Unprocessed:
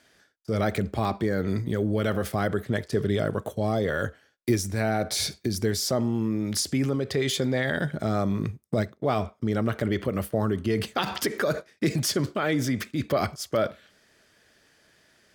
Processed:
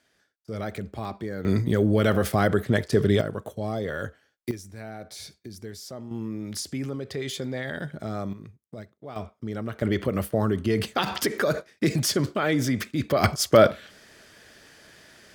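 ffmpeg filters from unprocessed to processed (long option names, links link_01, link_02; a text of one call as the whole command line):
ffmpeg -i in.wav -af "asetnsamples=nb_out_samples=441:pad=0,asendcmd='1.45 volume volume 4.5dB;3.21 volume volume -4dB;4.51 volume volume -13.5dB;6.11 volume volume -6dB;8.33 volume volume -15dB;9.16 volume volume -6.5dB;9.82 volume volume 1.5dB;13.24 volume volume 9.5dB',volume=-7dB" out.wav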